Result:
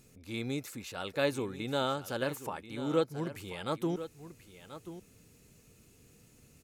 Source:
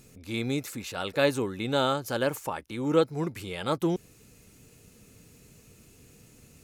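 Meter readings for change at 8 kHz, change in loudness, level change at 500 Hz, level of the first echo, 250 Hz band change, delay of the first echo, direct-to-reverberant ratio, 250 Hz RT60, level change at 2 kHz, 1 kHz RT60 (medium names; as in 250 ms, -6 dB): -6.0 dB, -6.0 dB, -6.0 dB, -13.0 dB, -6.0 dB, 1035 ms, no reverb, no reverb, -5.5 dB, no reverb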